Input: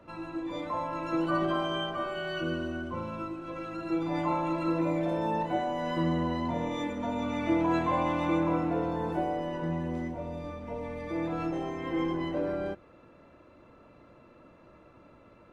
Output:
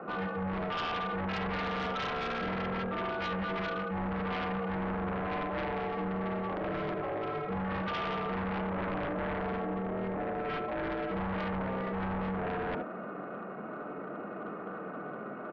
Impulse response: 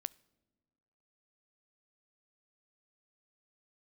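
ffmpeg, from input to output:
-filter_complex "[0:a]areverse,acompressor=threshold=-42dB:ratio=16,areverse,aeval=exprs='val(0)*sin(2*PI*140*n/s)':channel_layout=same,highpass=frequency=160:width=0.5412,highpass=frequency=160:width=1.3066,equalizer=frequency=200:width_type=q:width=4:gain=7,equalizer=frequency=310:width_type=q:width=4:gain=6,equalizer=frequency=590:width_type=q:width=4:gain=8,equalizer=frequency=1300:width_type=q:width=4:gain=10,lowpass=frequency=2100:width=0.5412,lowpass=frequency=2100:width=1.3066,aecho=1:1:47|74:0.316|0.531[link_01];[1:a]atrim=start_sample=2205,asetrate=42777,aresample=44100[link_02];[link_01][link_02]afir=irnorm=-1:irlink=0,aeval=exprs='0.0299*sin(PI/2*3.98*val(0)/0.0299)':channel_layout=same"

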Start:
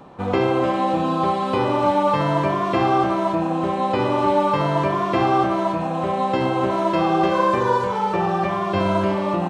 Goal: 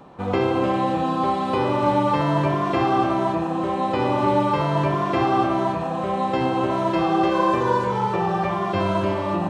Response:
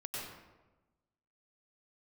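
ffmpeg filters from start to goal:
-filter_complex "[0:a]asplit=2[link_01][link_02];[1:a]atrim=start_sample=2205,lowshelf=frequency=210:gain=8.5,adelay=81[link_03];[link_02][link_03]afir=irnorm=-1:irlink=0,volume=-10.5dB[link_04];[link_01][link_04]amix=inputs=2:normalize=0,volume=-2dB"

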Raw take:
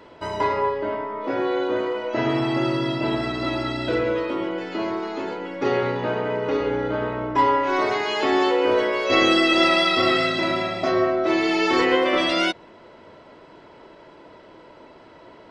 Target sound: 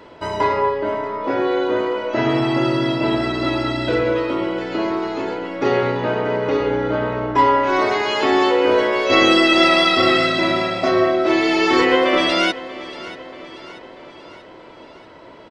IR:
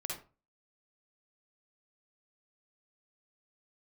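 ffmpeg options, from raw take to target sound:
-af "aecho=1:1:635|1270|1905|2540|3175:0.15|0.0808|0.0436|0.0236|0.0127,volume=4dB"

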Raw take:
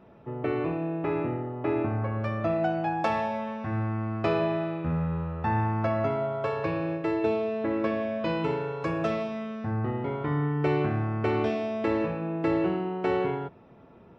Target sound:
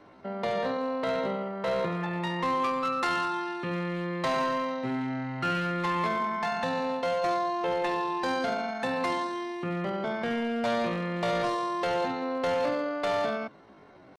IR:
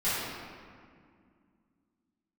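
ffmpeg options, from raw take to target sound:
-filter_complex "[0:a]aresample=16000,asoftclip=type=hard:threshold=-23dB,aresample=44100,acrossover=split=200|3000[link_01][link_02][link_03];[link_01]acompressor=threshold=-33dB:ratio=8[link_04];[link_04][link_02][link_03]amix=inputs=3:normalize=0,asetrate=70004,aresample=44100,atempo=0.629961"

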